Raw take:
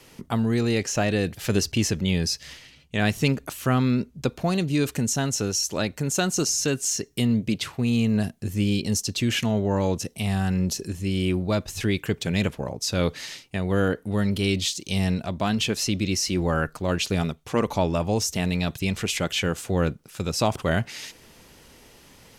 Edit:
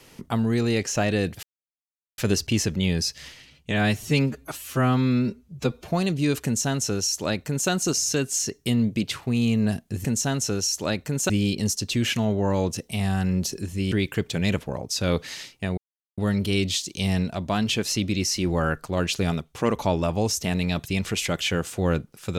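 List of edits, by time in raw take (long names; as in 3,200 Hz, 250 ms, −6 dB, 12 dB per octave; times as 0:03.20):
0:01.43: splice in silence 0.75 s
0:02.96–0:04.43: time-stretch 1.5×
0:04.96–0:06.21: duplicate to 0:08.56
0:11.18–0:11.83: remove
0:13.69–0:14.09: silence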